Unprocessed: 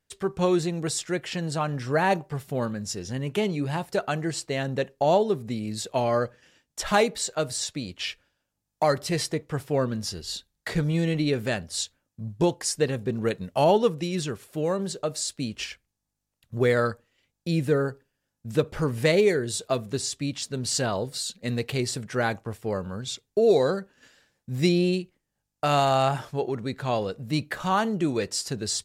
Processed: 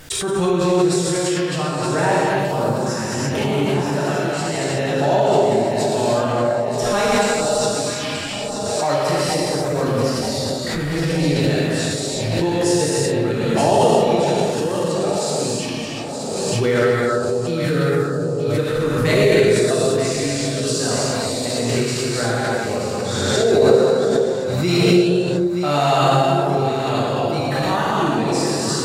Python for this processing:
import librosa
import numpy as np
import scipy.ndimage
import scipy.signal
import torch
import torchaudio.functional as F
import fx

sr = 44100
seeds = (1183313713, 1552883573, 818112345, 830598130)

p1 = x + fx.echo_alternate(x, sr, ms=465, hz=990.0, feedback_pct=72, wet_db=-5, dry=0)
p2 = fx.rev_gated(p1, sr, seeds[0], gate_ms=400, shape='flat', drr_db=-8.0)
p3 = fx.pre_swell(p2, sr, db_per_s=22.0)
y = p3 * librosa.db_to_amplitude(-3.0)